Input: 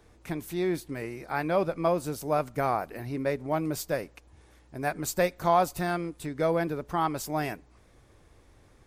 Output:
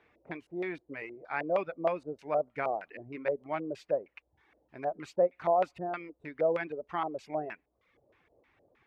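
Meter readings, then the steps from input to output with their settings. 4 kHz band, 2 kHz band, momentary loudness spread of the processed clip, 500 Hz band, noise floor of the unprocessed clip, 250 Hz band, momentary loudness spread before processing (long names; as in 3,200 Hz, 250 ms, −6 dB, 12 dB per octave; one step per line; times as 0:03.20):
below −10 dB, −4.5 dB, 14 LU, −2.0 dB, −59 dBFS, −9.0 dB, 10 LU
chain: auto-filter low-pass square 3.2 Hz 600–2,400 Hz
high-pass filter 350 Hz 6 dB per octave
reverb reduction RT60 0.71 s
level −5 dB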